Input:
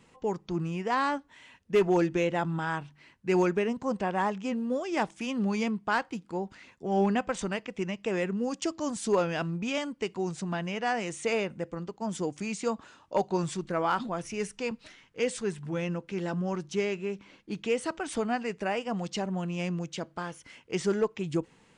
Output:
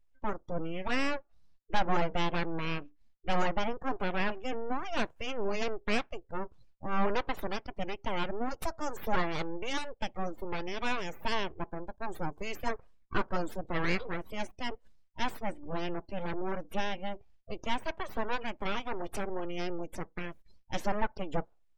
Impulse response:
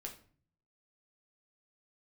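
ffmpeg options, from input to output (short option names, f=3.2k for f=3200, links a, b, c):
-af "aeval=exprs='abs(val(0))':c=same,afftdn=nr=27:nf=-46"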